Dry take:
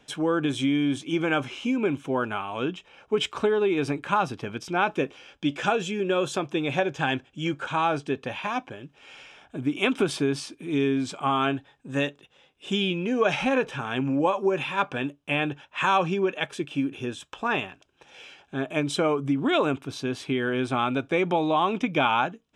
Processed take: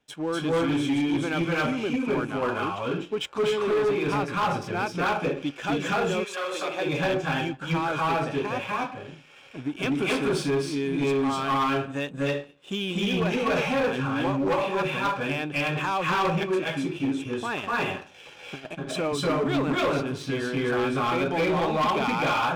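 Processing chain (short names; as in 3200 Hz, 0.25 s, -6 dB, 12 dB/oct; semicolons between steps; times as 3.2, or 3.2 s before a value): 17.63–18.87 negative-ratio compressor -33 dBFS, ratio -0.5; reverb RT60 0.45 s, pre-delay 0.241 s, DRR -5.5 dB; soft clip -19 dBFS, distortion -9 dB; power-law curve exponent 1.4; 6.23–6.85 HPF 1200 Hz -> 330 Hz 12 dB/oct; gain -1 dB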